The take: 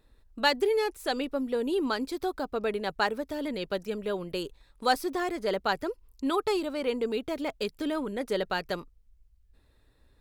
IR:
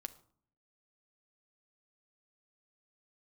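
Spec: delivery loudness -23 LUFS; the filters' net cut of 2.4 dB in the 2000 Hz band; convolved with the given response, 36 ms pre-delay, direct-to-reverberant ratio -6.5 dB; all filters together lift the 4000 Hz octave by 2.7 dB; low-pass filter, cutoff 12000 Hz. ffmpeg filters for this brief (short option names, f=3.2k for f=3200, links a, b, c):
-filter_complex "[0:a]lowpass=12k,equalizer=f=2k:t=o:g=-4,equalizer=f=4k:t=o:g=4.5,asplit=2[a][b];[1:a]atrim=start_sample=2205,adelay=36[c];[b][c]afir=irnorm=-1:irlink=0,volume=10dB[d];[a][d]amix=inputs=2:normalize=0,volume=0.5dB"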